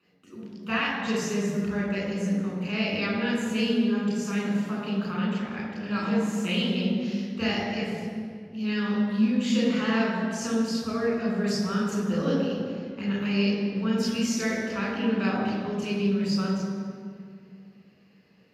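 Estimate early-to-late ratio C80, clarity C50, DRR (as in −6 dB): 1.5 dB, −0.5 dB, −5.5 dB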